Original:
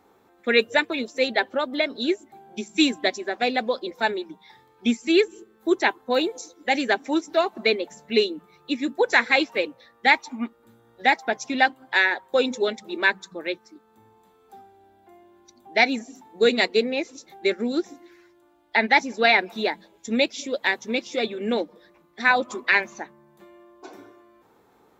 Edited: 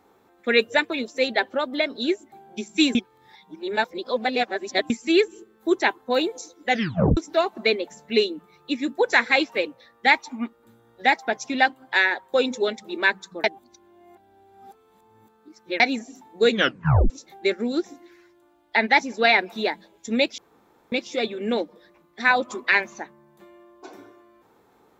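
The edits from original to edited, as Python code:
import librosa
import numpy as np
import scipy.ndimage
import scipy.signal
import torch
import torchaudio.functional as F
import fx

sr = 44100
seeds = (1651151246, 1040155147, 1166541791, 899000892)

y = fx.edit(x, sr, fx.reverse_span(start_s=2.95, length_s=1.95),
    fx.tape_stop(start_s=6.69, length_s=0.48),
    fx.reverse_span(start_s=13.44, length_s=2.36),
    fx.tape_stop(start_s=16.5, length_s=0.6),
    fx.room_tone_fill(start_s=20.38, length_s=0.54), tone=tone)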